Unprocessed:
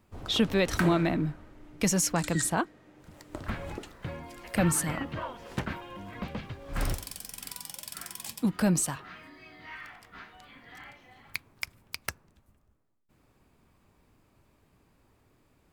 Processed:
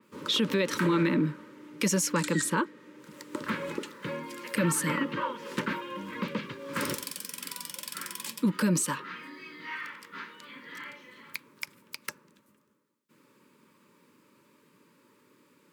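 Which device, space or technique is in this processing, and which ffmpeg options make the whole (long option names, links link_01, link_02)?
PA system with an anti-feedback notch: -af "highpass=frequency=180:width=0.5412,highpass=frequency=180:width=1.3066,asuperstop=centerf=720:order=20:qfactor=2.8,alimiter=limit=-23.5dB:level=0:latency=1:release=61,adynamicequalizer=threshold=0.00282:dfrequency=4100:dqfactor=0.7:tfrequency=4100:tqfactor=0.7:attack=5:release=100:ratio=0.375:range=2.5:mode=cutabove:tftype=highshelf,volume=6dB"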